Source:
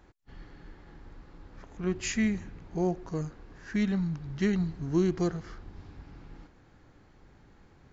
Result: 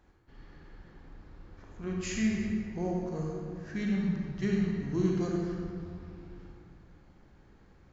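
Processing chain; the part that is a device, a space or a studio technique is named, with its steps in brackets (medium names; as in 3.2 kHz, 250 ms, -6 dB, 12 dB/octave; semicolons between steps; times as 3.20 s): stairwell (reverberation RT60 2.2 s, pre-delay 35 ms, DRR -2 dB); trim -6.5 dB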